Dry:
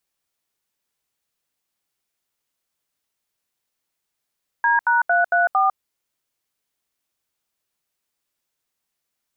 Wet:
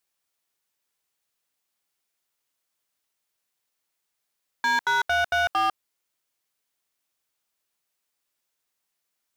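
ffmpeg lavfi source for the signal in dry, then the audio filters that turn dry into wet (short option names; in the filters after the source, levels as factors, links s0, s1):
-f lavfi -i "aevalsrc='0.141*clip(min(mod(t,0.227),0.151-mod(t,0.227))/0.002,0,1)*(eq(floor(t/0.227),0)*(sin(2*PI*941*mod(t,0.227))+sin(2*PI*1633*mod(t,0.227)))+eq(floor(t/0.227),1)*(sin(2*PI*941*mod(t,0.227))+sin(2*PI*1477*mod(t,0.227)))+eq(floor(t/0.227),2)*(sin(2*PI*697*mod(t,0.227))+sin(2*PI*1477*mod(t,0.227)))+eq(floor(t/0.227),3)*(sin(2*PI*697*mod(t,0.227))+sin(2*PI*1477*mod(t,0.227)))+eq(floor(t/0.227),4)*(sin(2*PI*770*mod(t,0.227))+sin(2*PI*1209*mod(t,0.227))))':d=1.135:s=44100"
-af "volume=9.44,asoftclip=hard,volume=0.106,lowshelf=f=330:g=-6"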